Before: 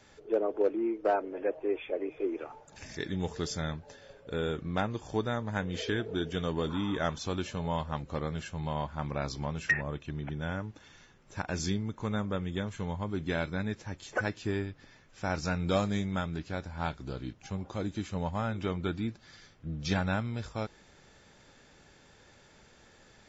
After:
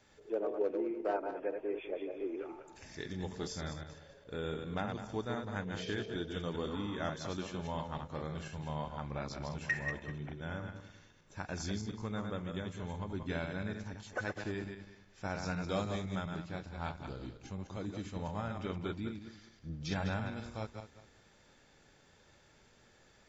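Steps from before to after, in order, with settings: backward echo that repeats 101 ms, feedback 48%, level -5 dB; trim -7 dB

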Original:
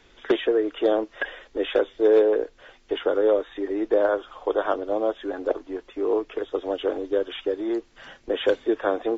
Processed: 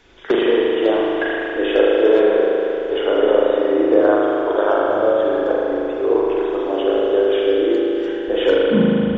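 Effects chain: tape stop on the ending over 0.71 s; spring tank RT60 3.3 s, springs 38 ms, chirp 70 ms, DRR -5 dB; trim +2.5 dB

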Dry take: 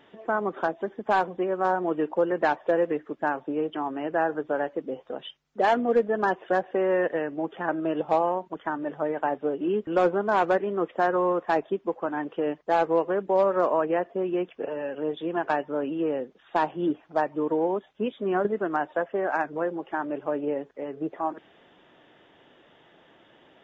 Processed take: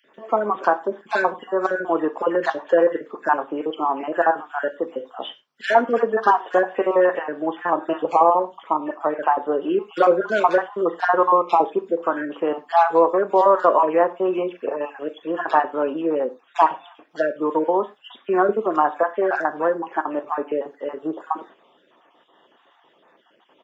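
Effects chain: random holes in the spectrogram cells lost 33%; gate -52 dBFS, range -7 dB; Bessel high-pass 340 Hz, order 2; peaking EQ 1.1 kHz +7 dB 0.55 oct; bands offset in time highs, lows 40 ms, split 2.1 kHz; gated-style reverb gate 130 ms falling, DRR 10 dB; trim +7.5 dB

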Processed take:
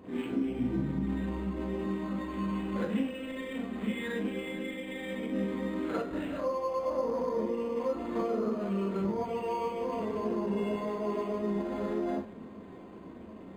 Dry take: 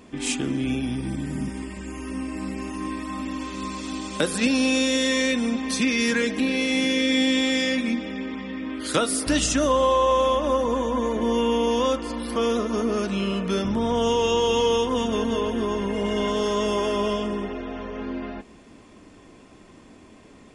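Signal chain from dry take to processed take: high-pass 64 Hz 12 dB/octave; hum notches 60/120/180/240/300 Hz; compression 12:1, threshold -30 dBFS, peak gain reduction 14 dB; plain phase-vocoder stretch 0.66×; tape spacing loss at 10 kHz 33 dB; reverberation RT60 0.30 s, pre-delay 33 ms, DRR -7.5 dB; decimation joined by straight lines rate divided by 8×

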